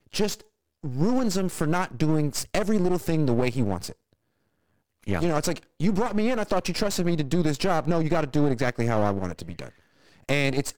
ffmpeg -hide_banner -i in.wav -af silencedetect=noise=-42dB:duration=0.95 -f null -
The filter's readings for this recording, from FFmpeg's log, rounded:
silence_start: 3.93
silence_end: 5.03 | silence_duration: 1.11